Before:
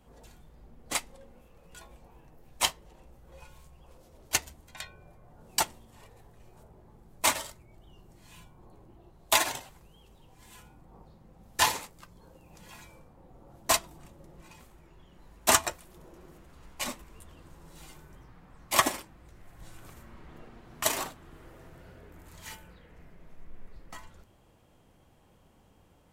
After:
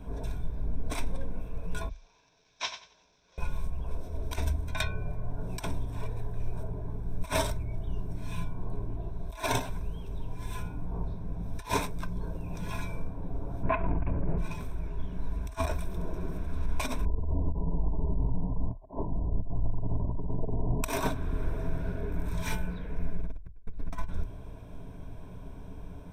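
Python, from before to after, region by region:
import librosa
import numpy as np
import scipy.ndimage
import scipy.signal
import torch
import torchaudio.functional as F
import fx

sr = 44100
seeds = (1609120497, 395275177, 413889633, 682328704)

y = fx.chain(x, sr, fx.cvsd(bps=32000),
    fx.differentiator(),
    fx.echo_feedback(ms=92, feedback_pct=24, wet_db=-10.0), at=(1.89, 3.38))
y = fx.chain(y, sr, fx.steep_lowpass(hz=2600.0, slope=48),
    fx.over_compress(threshold_db=-35.0, ratio=-1.0), at=(13.63, 14.38))
y = fx.chain(y, sr, fx.steep_lowpass(hz=1000.0, slope=96),
    fx.over_compress(threshold_db=-48.0, ratio=-0.5), at=(17.05, 20.84))
y = fx.tilt_eq(y, sr, slope=-2.5)
y = fx.over_compress(y, sr, threshold_db=-36.0, ratio=-0.5)
y = fx.ripple_eq(y, sr, per_octave=1.6, db=11)
y = F.gain(torch.from_numpy(y), 6.5).numpy()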